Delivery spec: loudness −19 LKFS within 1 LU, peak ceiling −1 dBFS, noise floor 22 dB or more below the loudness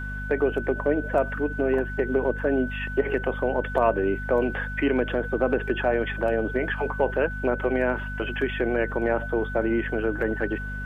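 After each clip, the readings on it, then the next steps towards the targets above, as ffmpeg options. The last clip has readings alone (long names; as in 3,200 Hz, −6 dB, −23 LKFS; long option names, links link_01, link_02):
mains hum 50 Hz; hum harmonics up to 250 Hz; level of the hum −31 dBFS; interfering tone 1,500 Hz; level of the tone −34 dBFS; integrated loudness −25.5 LKFS; sample peak −9.5 dBFS; target loudness −19.0 LKFS
→ -af "bandreject=frequency=50:width_type=h:width=6,bandreject=frequency=100:width_type=h:width=6,bandreject=frequency=150:width_type=h:width=6,bandreject=frequency=200:width_type=h:width=6,bandreject=frequency=250:width_type=h:width=6"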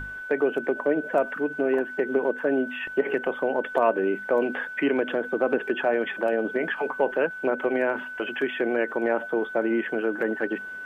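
mains hum none found; interfering tone 1,500 Hz; level of the tone −34 dBFS
→ -af "bandreject=frequency=1500:width=30"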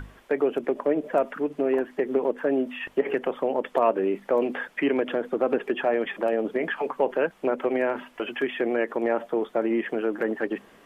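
interfering tone none found; integrated loudness −26.5 LKFS; sample peak −9.0 dBFS; target loudness −19.0 LKFS
→ -af "volume=7.5dB"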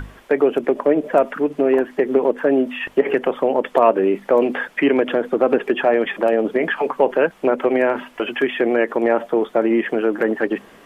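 integrated loudness −19.0 LKFS; sample peak −1.5 dBFS; background noise floor −47 dBFS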